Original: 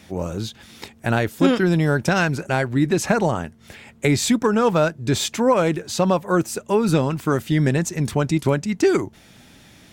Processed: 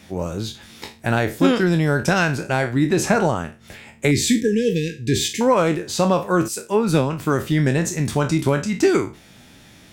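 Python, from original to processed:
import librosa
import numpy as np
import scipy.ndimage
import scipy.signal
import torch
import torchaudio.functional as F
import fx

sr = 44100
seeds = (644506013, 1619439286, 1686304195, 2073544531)

y = fx.spec_trails(x, sr, decay_s=0.31)
y = fx.brickwall_bandstop(y, sr, low_hz=500.0, high_hz=1600.0, at=(4.11, 5.41))
y = fx.band_widen(y, sr, depth_pct=70, at=(6.48, 7.2))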